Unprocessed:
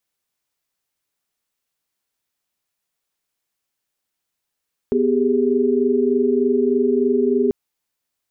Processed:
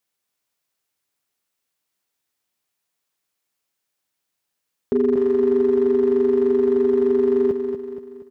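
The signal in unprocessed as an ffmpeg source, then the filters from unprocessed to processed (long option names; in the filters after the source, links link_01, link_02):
-f lavfi -i "aevalsrc='0.112*(sin(2*PI*246.94*t)+sin(2*PI*392*t)+sin(2*PI*415.3*t))':duration=2.59:sample_rate=44100"
-filter_complex "[0:a]highpass=frequency=83:poles=1,asoftclip=type=hard:threshold=-12dB,asplit=2[link_01][link_02];[link_02]aecho=0:1:237|474|711|948|1185:0.447|0.201|0.0905|0.0407|0.0183[link_03];[link_01][link_03]amix=inputs=2:normalize=0"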